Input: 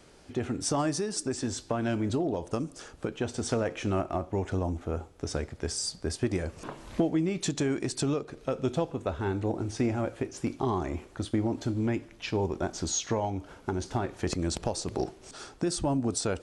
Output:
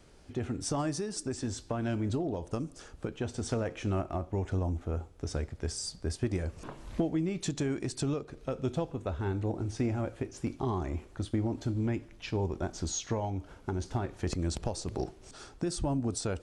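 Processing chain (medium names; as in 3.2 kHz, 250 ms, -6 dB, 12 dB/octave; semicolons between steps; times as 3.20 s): bass shelf 110 Hz +10.5 dB; trim -5 dB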